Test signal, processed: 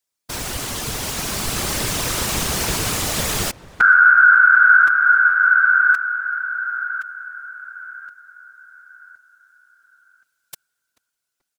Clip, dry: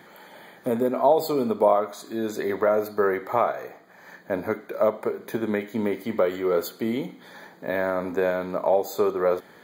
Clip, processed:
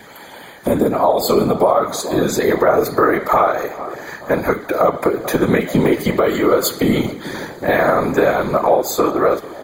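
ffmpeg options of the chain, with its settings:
ffmpeg -i in.wav -filter_complex "[0:a]dynaudnorm=framelen=250:gausssize=11:maxgain=5.5dB,asplit=2[link_01][link_02];[link_02]adelay=435,lowpass=frequency=1600:poles=1,volume=-19dB,asplit=2[link_03][link_04];[link_04]adelay=435,lowpass=frequency=1600:poles=1,volume=0.54,asplit=2[link_05][link_06];[link_06]adelay=435,lowpass=frequency=1600:poles=1,volume=0.54,asplit=2[link_07][link_08];[link_08]adelay=435,lowpass=frequency=1600:poles=1,volume=0.54[link_09];[link_01][link_03][link_05][link_07][link_09]amix=inputs=5:normalize=0,acompressor=threshold=-19dB:ratio=3,equalizer=frequency=7400:width_type=o:width=1.9:gain=6,afftfilt=real='hypot(re,im)*cos(2*PI*random(0))':imag='hypot(re,im)*sin(2*PI*random(1))':win_size=512:overlap=0.75,adynamicequalizer=threshold=0.00316:dfrequency=1200:dqfactor=7.1:tfrequency=1200:tqfactor=7.1:attack=5:release=100:ratio=0.375:range=3.5:mode=boostabove:tftype=bell,alimiter=level_in=17dB:limit=-1dB:release=50:level=0:latency=1,volume=-2.5dB" out.wav

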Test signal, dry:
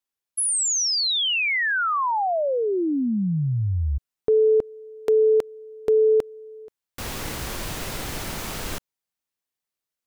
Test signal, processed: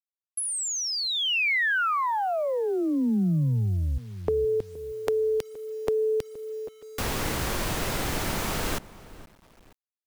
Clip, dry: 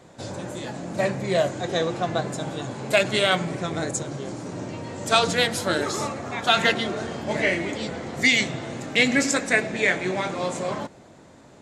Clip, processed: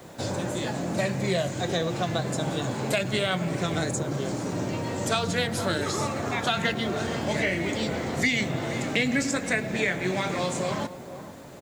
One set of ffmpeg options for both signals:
ffmpeg -i in.wav -filter_complex "[0:a]asplit=2[link_01][link_02];[link_02]adelay=471,lowpass=frequency=1300:poles=1,volume=-18dB,asplit=2[link_03][link_04];[link_04]adelay=471,lowpass=frequency=1300:poles=1,volume=0.3,asplit=2[link_05][link_06];[link_06]adelay=471,lowpass=frequency=1300:poles=1,volume=0.3[link_07];[link_01][link_03][link_05][link_07]amix=inputs=4:normalize=0,acrossover=split=180|2100[link_08][link_09][link_10];[link_08]acompressor=threshold=-34dB:ratio=2.5[link_11];[link_09]acompressor=threshold=-32dB:ratio=4[link_12];[link_10]acompressor=threshold=-38dB:ratio=3[link_13];[link_11][link_12][link_13]amix=inputs=3:normalize=0,acrusher=bits=9:mix=0:aa=0.000001,volume=4.5dB" out.wav

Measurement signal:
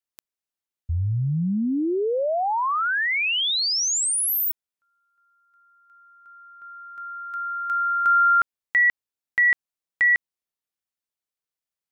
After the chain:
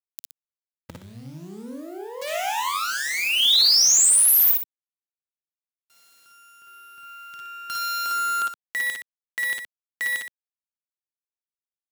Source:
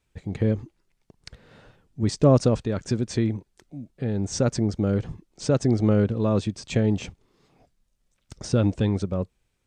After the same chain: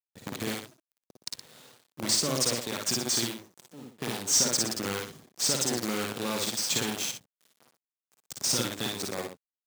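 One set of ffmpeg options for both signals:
ffmpeg -i in.wav -filter_complex "[0:a]aexciter=amount=3.1:drive=7:freq=3200,acrossover=split=1000|2600[link_01][link_02][link_03];[link_01]acompressor=threshold=-31dB:ratio=4[link_04];[link_02]acompressor=threshold=-37dB:ratio=2.5[link_05];[link_03]acompressor=threshold=-14dB:ratio=8[link_06];[link_04][link_05][link_06]amix=inputs=3:normalize=0,asplit=2[link_07][link_08];[link_08]asoftclip=type=hard:threshold=-21.5dB,volume=-9.5dB[link_09];[link_07][link_09]amix=inputs=2:normalize=0,acrusher=bits=5:dc=4:mix=0:aa=0.000001,highpass=170,asplit=2[link_10][link_11];[link_11]aecho=0:1:52|60|119:0.668|0.562|0.316[link_12];[link_10][link_12]amix=inputs=2:normalize=0,volume=-5dB" out.wav

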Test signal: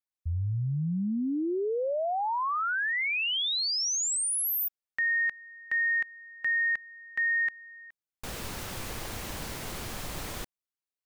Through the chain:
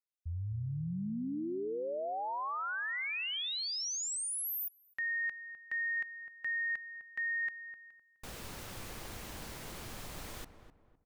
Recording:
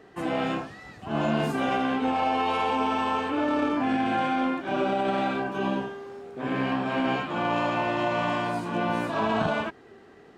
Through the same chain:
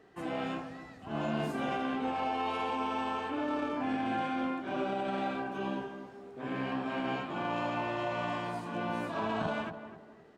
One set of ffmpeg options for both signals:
ffmpeg -i in.wav -filter_complex "[0:a]asplit=2[link_01][link_02];[link_02]adelay=255,lowpass=frequency=1300:poles=1,volume=-10dB,asplit=2[link_03][link_04];[link_04]adelay=255,lowpass=frequency=1300:poles=1,volume=0.36,asplit=2[link_05][link_06];[link_06]adelay=255,lowpass=frequency=1300:poles=1,volume=0.36,asplit=2[link_07][link_08];[link_08]adelay=255,lowpass=frequency=1300:poles=1,volume=0.36[link_09];[link_01][link_03][link_05][link_07][link_09]amix=inputs=5:normalize=0,volume=-8dB" out.wav

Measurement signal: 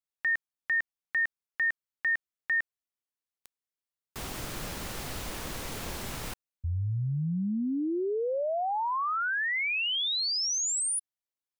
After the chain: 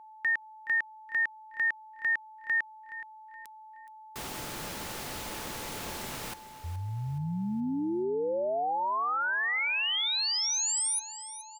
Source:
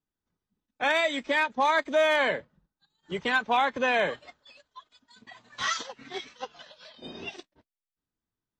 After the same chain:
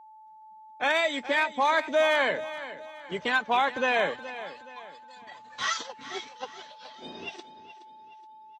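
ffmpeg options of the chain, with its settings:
ffmpeg -i in.wav -af "aeval=exprs='val(0)+0.00398*sin(2*PI*870*n/s)':channel_layout=same,lowshelf=frequency=100:gain=-11,aecho=1:1:422|844|1266|1688:0.2|0.0778|0.0303|0.0118" out.wav

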